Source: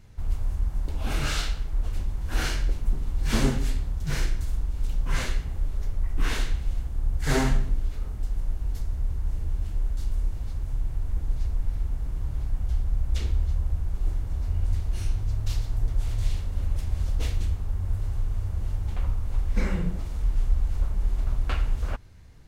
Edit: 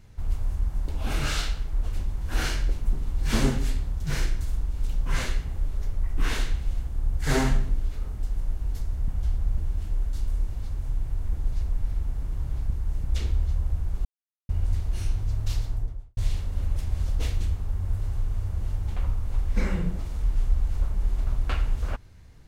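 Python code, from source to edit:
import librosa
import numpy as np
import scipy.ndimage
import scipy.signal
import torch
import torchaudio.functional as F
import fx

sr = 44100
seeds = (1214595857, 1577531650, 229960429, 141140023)

y = fx.studio_fade_out(x, sr, start_s=15.6, length_s=0.57)
y = fx.edit(y, sr, fx.swap(start_s=9.08, length_s=0.34, other_s=12.54, other_length_s=0.5),
    fx.silence(start_s=14.05, length_s=0.44), tone=tone)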